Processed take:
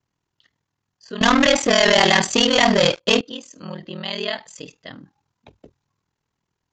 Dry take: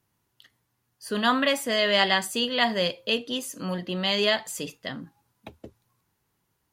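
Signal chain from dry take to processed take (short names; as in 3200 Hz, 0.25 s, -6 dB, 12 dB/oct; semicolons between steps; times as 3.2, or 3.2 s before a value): 1.21–3.21 sample leveller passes 5; ring modulator 20 Hz; downsampling 16000 Hz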